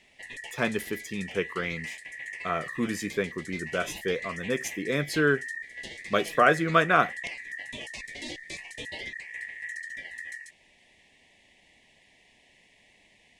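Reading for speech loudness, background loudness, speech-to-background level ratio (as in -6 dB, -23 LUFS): -28.0 LUFS, -38.0 LUFS, 10.0 dB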